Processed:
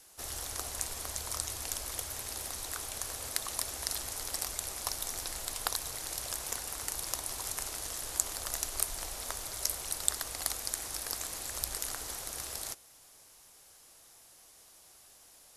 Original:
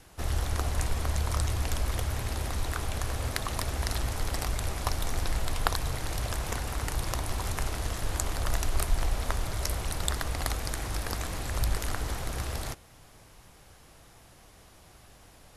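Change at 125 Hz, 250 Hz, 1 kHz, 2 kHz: -19.5, -13.5, -8.0, -7.0 dB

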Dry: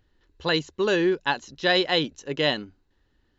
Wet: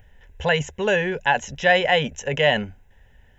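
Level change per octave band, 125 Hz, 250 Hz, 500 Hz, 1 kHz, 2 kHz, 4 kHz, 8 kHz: +6.0 dB, -2.5 dB, +3.5 dB, +6.5 dB, +6.5 dB, -0.5 dB, n/a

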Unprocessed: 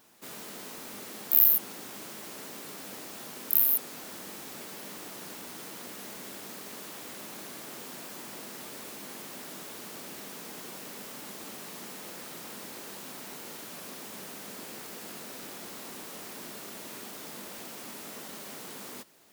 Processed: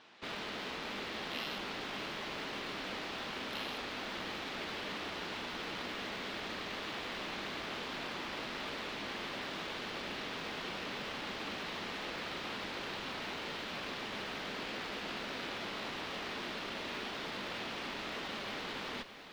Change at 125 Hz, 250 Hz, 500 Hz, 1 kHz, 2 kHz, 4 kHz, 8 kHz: +2.5, +1.5, +3.0, +5.0, +7.0, +5.5, -13.0 dB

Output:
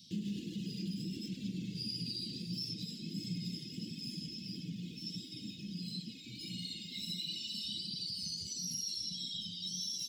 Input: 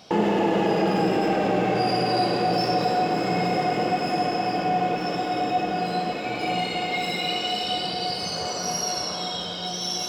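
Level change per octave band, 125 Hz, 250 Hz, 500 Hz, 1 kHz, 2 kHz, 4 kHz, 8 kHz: -11.5 dB, -14.5 dB, -35.0 dB, under -40 dB, -27.0 dB, -10.0 dB, -9.0 dB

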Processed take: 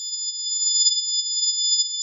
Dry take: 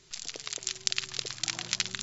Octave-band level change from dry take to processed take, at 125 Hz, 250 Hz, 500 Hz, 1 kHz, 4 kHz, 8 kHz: under -40 dB, under -40 dB, under -40 dB, under -40 dB, +13.0 dB, n/a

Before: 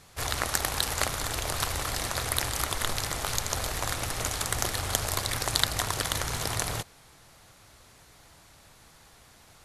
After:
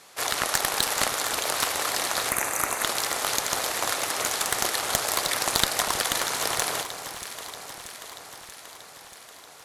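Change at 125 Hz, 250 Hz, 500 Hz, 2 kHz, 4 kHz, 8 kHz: -10.0, +1.0, +4.5, +5.0, +4.0, +4.5 dB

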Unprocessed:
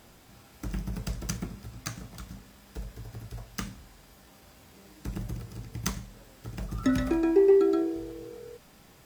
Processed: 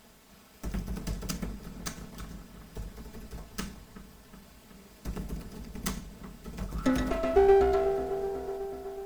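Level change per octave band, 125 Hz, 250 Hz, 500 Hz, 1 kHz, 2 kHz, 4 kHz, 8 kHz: -2.5, -4.0, -0.5, +8.0, +1.0, -0.5, -2.0 dB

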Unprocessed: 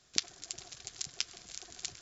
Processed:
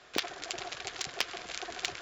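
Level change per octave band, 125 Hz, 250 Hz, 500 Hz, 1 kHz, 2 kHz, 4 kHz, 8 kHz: +3.0 dB, +10.5 dB, +15.5 dB, +16.0 dB, +10.0 dB, +2.5 dB, n/a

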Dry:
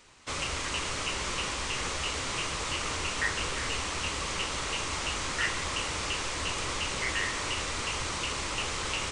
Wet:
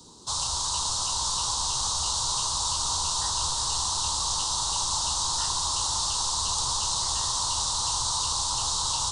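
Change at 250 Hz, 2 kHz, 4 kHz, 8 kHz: -7.5, -16.0, +6.5, +10.5 dB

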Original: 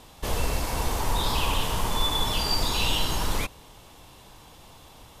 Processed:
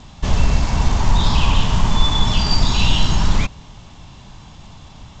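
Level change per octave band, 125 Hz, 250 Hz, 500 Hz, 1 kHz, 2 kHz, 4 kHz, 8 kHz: +13.5, +11.0, +2.5, +5.0, +5.5, +5.5, +2.0 dB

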